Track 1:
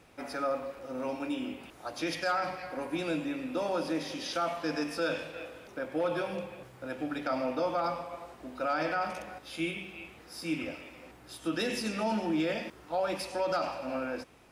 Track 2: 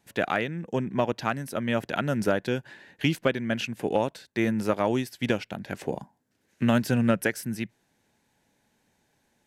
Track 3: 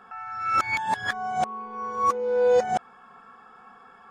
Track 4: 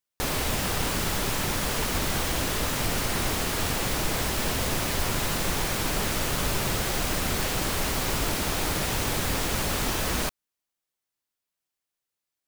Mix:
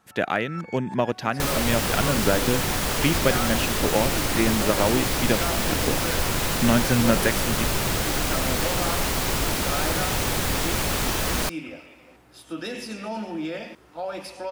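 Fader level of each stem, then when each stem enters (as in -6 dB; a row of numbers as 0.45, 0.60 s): -1.0, +2.0, -16.0, +2.5 dB; 1.05, 0.00, 0.00, 1.20 s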